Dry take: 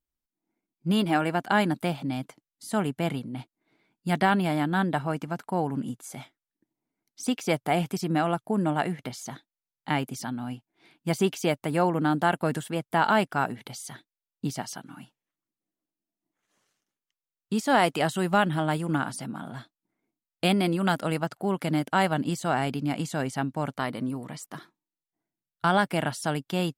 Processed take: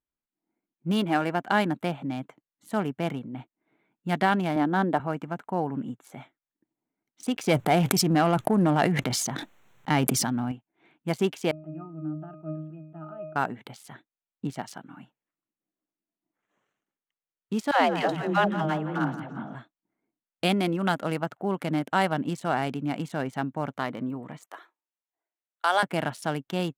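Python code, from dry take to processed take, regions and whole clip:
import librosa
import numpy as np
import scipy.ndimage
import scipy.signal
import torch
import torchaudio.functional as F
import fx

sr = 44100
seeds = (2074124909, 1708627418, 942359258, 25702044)

y = fx.chain(x, sr, fx.highpass(hz=230.0, slope=12),
    fx.tilt_shelf(db=6.0, hz=1500.0), at=(4.56, 5.0))
y = fx.chain(y, sr, fx.low_shelf(hz=95.0, db=11.0),
    fx.leveller(passes=1),
    fx.sustainer(db_per_s=21.0), at=(7.34, 10.52))
y = fx.chain(y, sr, fx.octave_resonator(note='D#', decay_s=0.36),
    fx.sustainer(db_per_s=64.0), at=(11.51, 13.36))
y = fx.chain(y, sr, fx.lowpass(hz=5700.0, slope=24),
    fx.dispersion(late='lows', ms=139.0, hz=380.0),
    fx.echo_feedback(ms=171, feedback_pct=43, wet_db=-12), at=(17.71, 19.55))
y = fx.chain(y, sr, fx.highpass(hz=450.0, slope=24),
    fx.high_shelf(hz=4000.0, db=7.0), at=(24.45, 25.83))
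y = fx.wiener(y, sr, points=9)
y = fx.low_shelf(y, sr, hz=75.0, db=-11.5)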